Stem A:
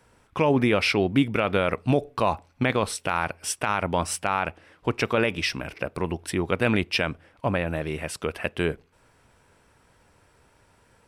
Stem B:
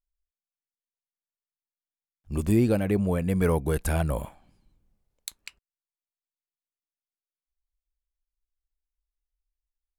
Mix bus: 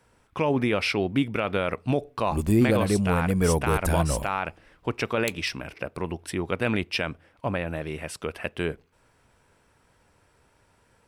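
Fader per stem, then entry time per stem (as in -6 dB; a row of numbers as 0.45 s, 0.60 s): -3.0 dB, +1.0 dB; 0.00 s, 0.00 s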